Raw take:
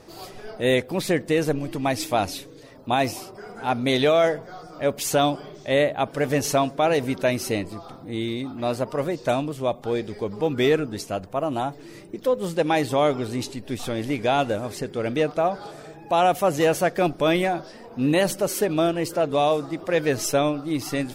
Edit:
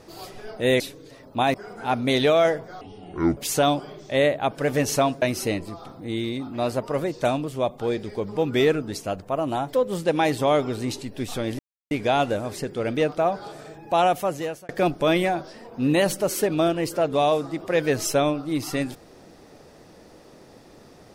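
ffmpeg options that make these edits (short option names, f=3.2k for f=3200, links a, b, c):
-filter_complex "[0:a]asplit=9[a][b][c][d][e][f][g][h][i];[a]atrim=end=0.802[j];[b]atrim=start=2.318:end=3.062[k];[c]atrim=start=3.328:end=4.604[l];[d]atrim=start=4.6:end=4.93,asetpts=PTS-STARTPTS,asetrate=26019,aresample=44100,atrim=end_sample=24666,asetpts=PTS-STARTPTS[m];[e]atrim=start=4.926:end=6.782[n];[f]atrim=start=7.258:end=11.772[o];[g]atrim=start=12.238:end=14.1,asetpts=PTS-STARTPTS,afade=t=out:st=1.858:d=0.004:c=hsin,apad=pad_dur=0.32[p];[h]atrim=start=14.1:end=16.88,asetpts=PTS-STARTPTS,afade=t=in:d=0.004:c=hsin,afade=t=out:st=2.09:d=0.69[q];[i]atrim=start=16.88,asetpts=PTS-STARTPTS,afade=t=in:d=0.004:c=hsin[r];[j][k]acrossfade=d=0.004:c1=hsin:c2=hsin[s];[s][l]acrossfade=d=0.004:c1=hsin:c2=hsin[t];[t][m]acrossfade=d=0.004:c1=hsin:c2=hsin[u];[u][n]acrossfade=d=0.004:c1=hsin:c2=hsin[v];[v][o]acrossfade=d=0.004:c1=hsin:c2=hsin[w];[p][q][r]concat=n=3:v=0:a=1[x];[w][x]acrossfade=d=0.004:c1=hsin:c2=hsin"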